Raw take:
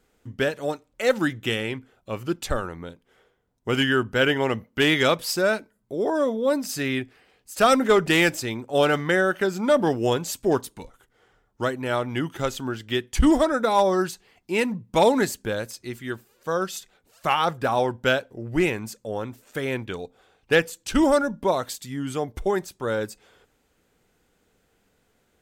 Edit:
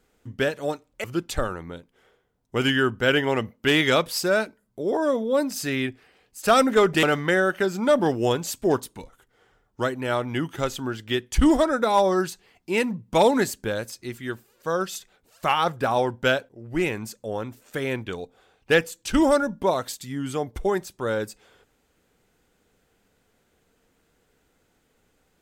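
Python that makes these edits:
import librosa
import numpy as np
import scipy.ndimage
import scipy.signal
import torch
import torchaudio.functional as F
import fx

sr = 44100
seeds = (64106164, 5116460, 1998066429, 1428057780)

y = fx.edit(x, sr, fx.cut(start_s=1.04, length_s=1.13),
    fx.cut(start_s=8.16, length_s=0.68),
    fx.fade_in_from(start_s=18.3, length_s=0.49, floor_db=-12.5), tone=tone)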